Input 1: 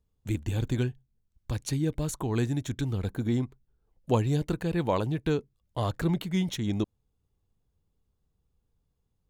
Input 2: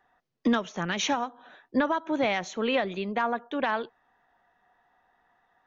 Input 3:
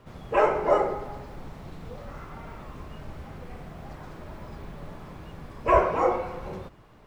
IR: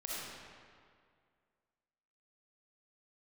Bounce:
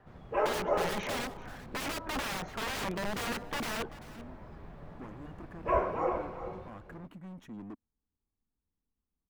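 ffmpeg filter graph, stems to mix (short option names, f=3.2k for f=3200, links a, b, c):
-filter_complex "[0:a]bandreject=f=2.1k:w=12,volume=32dB,asoftclip=hard,volume=-32dB,equalizer=f=125:t=o:w=1:g=-9,equalizer=f=250:t=o:w=1:g=10,equalizer=f=500:t=o:w=1:g=-5,equalizer=f=1k:t=o:w=1:g=5,equalizer=f=2k:t=o:w=1:g=4,equalizer=f=4k:t=o:w=1:g=-11,adelay=900,volume=-12.5dB[a];[1:a]highshelf=f=2.4k:t=q:w=1.5:g=-13,aeval=exprs='(mod(28.2*val(0)+1,2)-1)/28.2':c=same,volume=1.5dB,asplit=3[b][c][d];[c]volume=-17.5dB[e];[2:a]volume=-8dB,asplit=2[f][g];[g]volume=-11dB[h];[d]apad=whole_len=449631[i];[a][i]sidechaincompress=threshold=-43dB:ratio=8:attack=16:release=1470[j];[e][h]amix=inputs=2:normalize=0,aecho=0:1:388:1[k];[j][b][f][k]amix=inputs=4:normalize=0,highshelf=f=4.1k:g=-11.5"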